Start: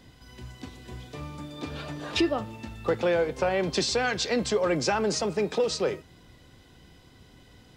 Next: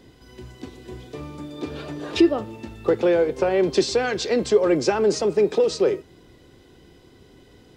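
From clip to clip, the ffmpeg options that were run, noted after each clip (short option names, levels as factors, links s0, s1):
-af "equalizer=f=380:t=o:w=0.86:g=10.5"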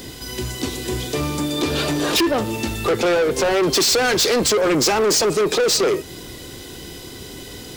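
-filter_complex "[0:a]asplit=2[s0][s1];[s1]acompressor=threshold=0.0447:ratio=6,volume=1.33[s2];[s0][s2]amix=inputs=2:normalize=0,crystalizer=i=4:c=0,asoftclip=type=tanh:threshold=0.0891,volume=2"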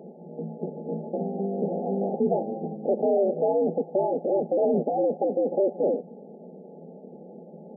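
-af "aeval=exprs='val(0)*sin(2*PI*100*n/s)':c=same,afftfilt=real='re*between(b*sr/4096,160,870)':imag='im*between(b*sr/4096,160,870)':win_size=4096:overlap=0.75,equalizer=f=300:t=o:w=0.25:g=-15"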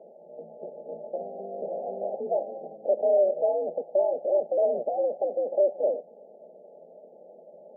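-af "bandpass=f=610:t=q:w=6.2:csg=0,volume=1.68"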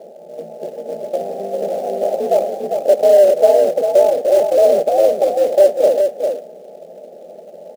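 -filter_complex "[0:a]asplit=2[s0][s1];[s1]acrusher=bits=3:mode=log:mix=0:aa=0.000001,volume=0.562[s2];[s0][s2]amix=inputs=2:normalize=0,aecho=1:1:399:0.531,volume=2.51"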